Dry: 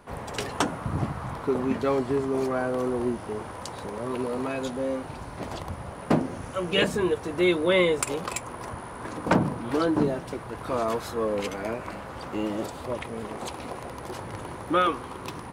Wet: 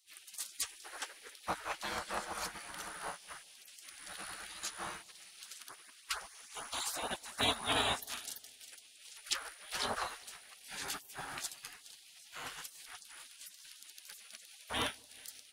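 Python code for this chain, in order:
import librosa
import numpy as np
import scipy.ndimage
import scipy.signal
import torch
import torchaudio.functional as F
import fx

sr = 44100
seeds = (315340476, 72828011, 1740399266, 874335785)

y = x + 10.0 ** (-17.5 / 20.0) * np.pad(x, (int(416 * sr / 1000.0), 0))[:len(x)]
y = fx.filter_lfo_notch(y, sr, shape='saw_up', hz=6.6, low_hz=860.0, high_hz=3500.0, q=1.4, at=(5.44, 7.63))
y = fx.spec_gate(y, sr, threshold_db=-25, keep='weak')
y = fx.low_shelf(y, sr, hz=130.0, db=-10.0)
y = fx.echo_bbd(y, sr, ms=189, stages=1024, feedback_pct=62, wet_db=-19.5)
y = fx.dynamic_eq(y, sr, hz=2200.0, q=1.3, threshold_db=-59.0, ratio=4.0, max_db=-6)
y = fx.upward_expand(y, sr, threshold_db=-58.0, expansion=1.5)
y = F.gain(torch.from_numpy(y), 9.5).numpy()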